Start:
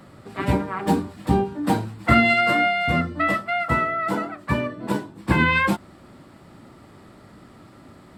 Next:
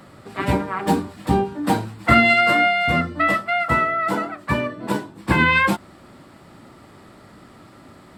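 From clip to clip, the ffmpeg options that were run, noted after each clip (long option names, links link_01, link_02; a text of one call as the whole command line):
ffmpeg -i in.wav -af "lowshelf=frequency=410:gain=-4,volume=3.5dB" out.wav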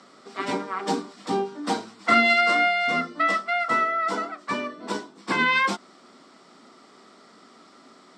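ffmpeg -i in.wav -af "highpass=frequency=260:width=0.5412,highpass=frequency=260:width=1.3066,equalizer=frequency=320:width_type=q:width=4:gain=-9,equalizer=frequency=560:width_type=q:width=4:gain=-8,equalizer=frequency=870:width_type=q:width=4:gain=-7,equalizer=frequency=1700:width_type=q:width=4:gain=-7,equalizer=frequency=2600:width_type=q:width=4:gain=-6,equalizer=frequency=5600:width_type=q:width=4:gain=7,lowpass=frequency=7800:width=0.5412,lowpass=frequency=7800:width=1.3066" out.wav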